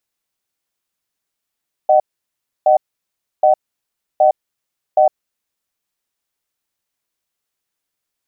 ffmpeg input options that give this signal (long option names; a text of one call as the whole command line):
ffmpeg -f lavfi -i "aevalsrc='0.299*(sin(2*PI*614*t)+sin(2*PI*755*t))*clip(min(mod(t,0.77),0.11-mod(t,0.77))/0.005,0,1)':duration=3.62:sample_rate=44100" out.wav